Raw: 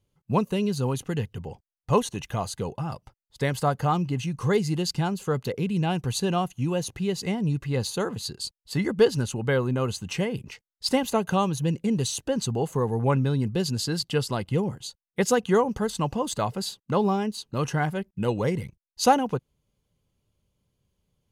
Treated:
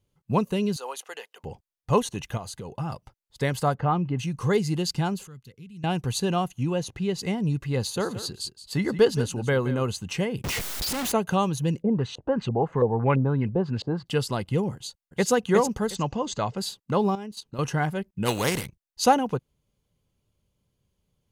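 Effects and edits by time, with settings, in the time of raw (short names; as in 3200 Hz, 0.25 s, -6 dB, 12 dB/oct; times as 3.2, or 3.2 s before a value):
0.76–1.44 HPF 570 Hz 24 dB/oct
2.37–2.78 compressor 5:1, threshold -33 dBFS
3.75–4.19 LPF 2300 Hz
5.27–5.84 passive tone stack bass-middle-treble 6-0-2
6.63–7.19 high shelf 9100 Hz -11.5 dB
7.79–9.83 echo 0.172 s -13.5 dB
10.44–11.12 infinite clipping
11.82–14.06 LFO low-pass saw up 3 Hz 500–3000 Hz
14.75–15.31 echo throw 0.36 s, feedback 20%, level -4.5 dB
15.95–16.57 Chebyshev low-pass 7000 Hz, order 4
17.1–17.59 level quantiser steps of 12 dB
18.25–18.65 spectral contrast lowered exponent 0.51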